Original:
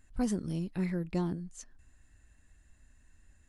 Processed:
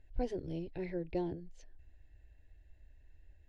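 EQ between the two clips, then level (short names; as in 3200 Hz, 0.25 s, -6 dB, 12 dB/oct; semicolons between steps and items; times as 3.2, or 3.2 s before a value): air absorption 290 m; fixed phaser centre 500 Hz, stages 4; +3.0 dB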